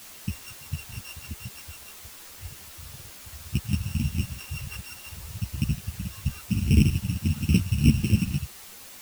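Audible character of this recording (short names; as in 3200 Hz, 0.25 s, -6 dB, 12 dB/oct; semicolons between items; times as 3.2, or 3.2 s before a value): a buzz of ramps at a fixed pitch in blocks of 16 samples; tremolo triangle 4.3 Hz, depth 40%; a quantiser's noise floor 8-bit, dither triangular; a shimmering, thickened sound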